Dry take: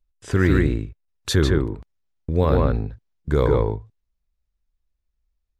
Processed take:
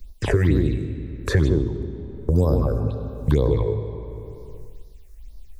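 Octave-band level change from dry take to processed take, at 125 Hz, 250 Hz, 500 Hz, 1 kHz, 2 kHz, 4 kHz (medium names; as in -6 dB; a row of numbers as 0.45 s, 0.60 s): +1.5 dB, -1.0 dB, -1.5 dB, -6.0 dB, -3.5 dB, -7.0 dB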